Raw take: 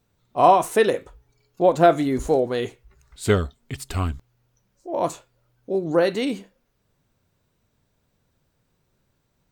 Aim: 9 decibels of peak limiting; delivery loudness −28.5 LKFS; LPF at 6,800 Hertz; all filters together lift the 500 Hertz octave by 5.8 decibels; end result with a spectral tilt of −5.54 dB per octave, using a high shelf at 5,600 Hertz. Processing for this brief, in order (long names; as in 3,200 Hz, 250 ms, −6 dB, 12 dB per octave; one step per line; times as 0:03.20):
low-pass filter 6,800 Hz
parametric band 500 Hz +7 dB
high-shelf EQ 5,600 Hz +6 dB
level −7 dB
brickwall limiter −16 dBFS